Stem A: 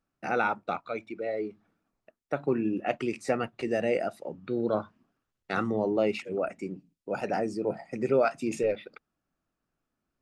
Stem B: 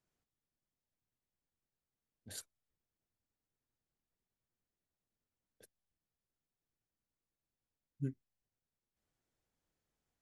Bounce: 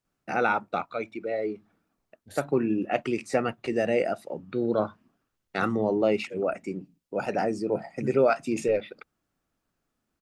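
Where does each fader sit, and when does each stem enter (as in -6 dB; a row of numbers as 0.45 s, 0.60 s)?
+2.5 dB, +2.0 dB; 0.05 s, 0.00 s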